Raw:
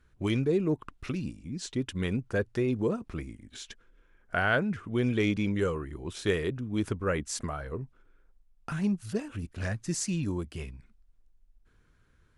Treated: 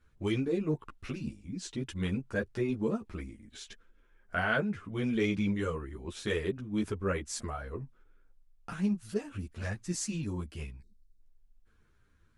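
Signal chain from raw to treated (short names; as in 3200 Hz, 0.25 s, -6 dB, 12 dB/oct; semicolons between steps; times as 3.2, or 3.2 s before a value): spectral delete 10.82–11.21, 490–3600 Hz; ensemble effect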